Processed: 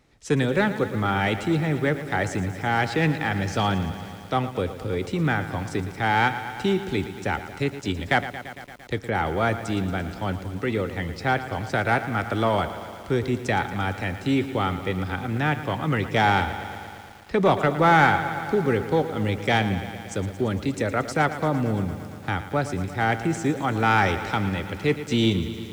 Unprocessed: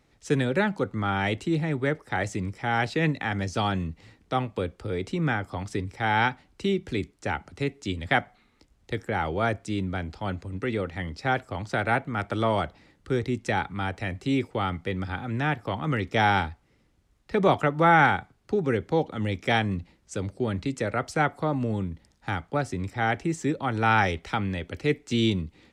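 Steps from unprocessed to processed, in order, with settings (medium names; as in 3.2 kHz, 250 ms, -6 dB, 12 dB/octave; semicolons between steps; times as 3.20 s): in parallel at -4 dB: hard clipper -19 dBFS, distortion -12 dB; on the sum: bit-crushed delay 114 ms, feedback 80%, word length 7-bit, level -12.5 dB; trim -1.5 dB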